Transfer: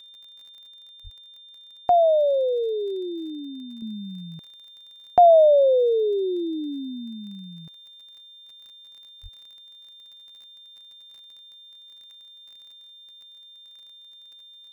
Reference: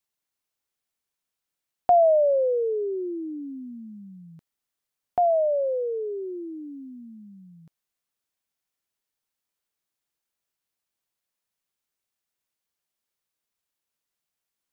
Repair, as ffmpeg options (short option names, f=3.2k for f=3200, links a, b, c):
-filter_complex "[0:a]adeclick=t=4,bandreject=f=3.6k:w=30,asplit=3[a][b][c];[a]afade=t=out:st=1.03:d=0.02[d];[b]highpass=f=140:w=0.5412,highpass=f=140:w=1.3066,afade=t=in:st=1.03:d=0.02,afade=t=out:st=1.15:d=0.02[e];[c]afade=t=in:st=1.15:d=0.02[f];[d][e][f]amix=inputs=3:normalize=0,asplit=3[g][h][i];[g]afade=t=out:st=9.22:d=0.02[j];[h]highpass=f=140:w=0.5412,highpass=f=140:w=1.3066,afade=t=in:st=9.22:d=0.02,afade=t=out:st=9.34:d=0.02[k];[i]afade=t=in:st=9.34:d=0.02[l];[j][k][l]amix=inputs=3:normalize=0,asetnsamples=n=441:p=0,asendcmd='3.82 volume volume -8dB',volume=0dB"